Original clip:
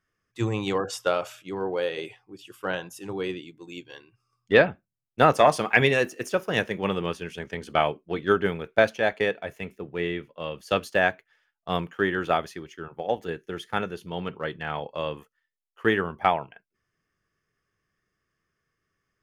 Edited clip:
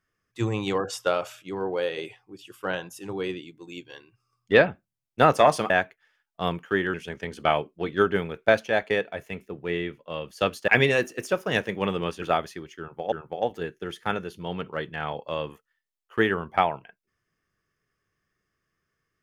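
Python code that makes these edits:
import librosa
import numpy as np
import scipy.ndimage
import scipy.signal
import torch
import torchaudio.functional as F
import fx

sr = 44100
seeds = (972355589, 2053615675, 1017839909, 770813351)

y = fx.edit(x, sr, fx.swap(start_s=5.7, length_s=1.54, other_s=10.98, other_length_s=1.24),
    fx.repeat(start_s=12.79, length_s=0.33, count=2), tone=tone)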